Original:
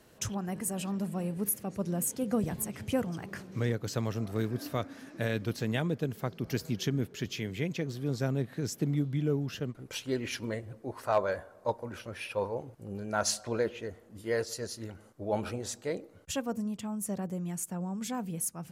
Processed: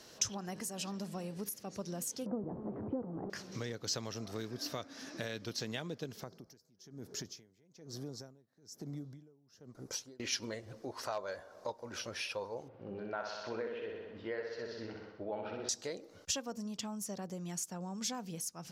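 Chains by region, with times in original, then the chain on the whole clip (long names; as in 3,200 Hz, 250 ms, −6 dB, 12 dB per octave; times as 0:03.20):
0:02.26–0:03.30: converter with a step at zero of −34 dBFS + low-pass filter 1,000 Hz 24 dB per octave + parametric band 320 Hz +9 dB 1.2 octaves
0:06.23–0:10.20: downward compressor 3 to 1, threshold −35 dBFS + parametric band 2,900 Hz −14.5 dB 1.3 octaves + tremolo with a sine in dB 1.1 Hz, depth 30 dB
0:12.68–0:15.69: low-pass filter 2,800 Hz 24 dB per octave + low-shelf EQ 94 Hz −10.5 dB + flutter between parallel walls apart 10.8 metres, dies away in 0.84 s
whole clip: low-shelf EQ 210 Hz −10 dB; downward compressor 3 to 1, threshold −44 dBFS; drawn EQ curve 2,400 Hz 0 dB, 5,600 Hz +12 dB, 8,700 Hz −3 dB; level +3.5 dB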